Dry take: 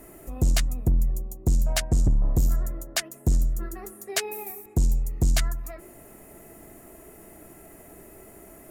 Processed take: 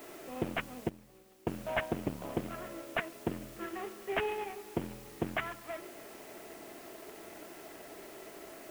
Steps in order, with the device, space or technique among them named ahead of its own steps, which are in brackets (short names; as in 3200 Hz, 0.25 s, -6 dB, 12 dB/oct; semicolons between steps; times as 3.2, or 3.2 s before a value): army field radio (BPF 330–3200 Hz; CVSD 16 kbps; white noise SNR 16 dB); 0.89–1.5 gate -38 dBFS, range -12 dB; gain +2 dB